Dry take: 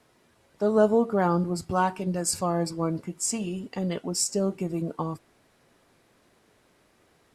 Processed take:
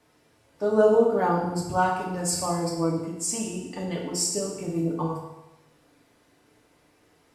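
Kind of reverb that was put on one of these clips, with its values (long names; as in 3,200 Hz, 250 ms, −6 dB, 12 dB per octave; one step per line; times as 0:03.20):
feedback delay network reverb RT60 1 s, low-frequency decay 0.95×, high-frequency decay 0.95×, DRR −2.5 dB
level −3.5 dB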